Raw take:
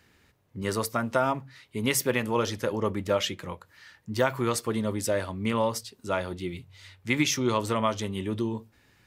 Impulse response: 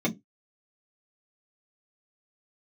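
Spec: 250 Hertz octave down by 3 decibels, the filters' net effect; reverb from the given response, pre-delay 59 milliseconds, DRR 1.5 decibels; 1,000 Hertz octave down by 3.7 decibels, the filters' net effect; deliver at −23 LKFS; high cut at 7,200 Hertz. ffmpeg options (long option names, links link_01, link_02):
-filter_complex "[0:a]lowpass=7200,equalizer=frequency=250:width_type=o:gain=-3.5,equalizer=frequency=1000:width_type=o:gain=-4.5,asplit=2[link_01][link_02];[1:a]atrim=start_sample=2205,adelay=59[link_03];[link_02][link_03]afir=irnorm=-1:irlink=0,volume=-11dB[link_04];[link_01][link_04]amix=inputs=2:normalize=0"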